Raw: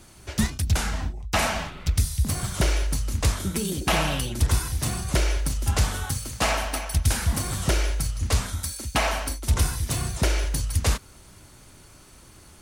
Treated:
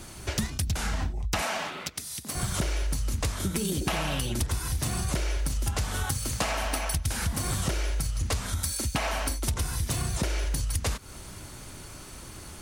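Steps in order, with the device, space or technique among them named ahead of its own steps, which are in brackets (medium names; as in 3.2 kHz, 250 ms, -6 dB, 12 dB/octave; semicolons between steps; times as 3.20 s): serial compression, peaks first (compression, threshold -28 dBFS, peak gain reduction 12 dB; compression 2:1, threshold -34 dBFS, peak gain reduction 5 dB); 1.42–2.35 s: high-pass 290 Hz 12 dB/octave; trim +6.5 dB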